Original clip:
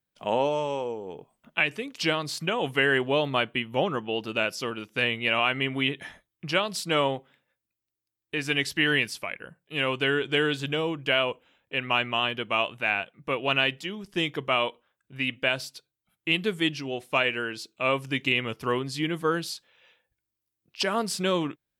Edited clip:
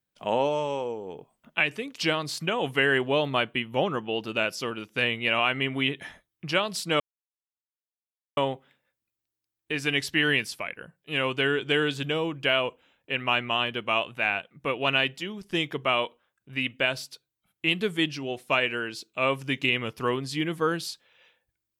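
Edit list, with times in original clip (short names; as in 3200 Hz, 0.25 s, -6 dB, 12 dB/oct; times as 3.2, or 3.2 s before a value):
7 insert silence 1.37 s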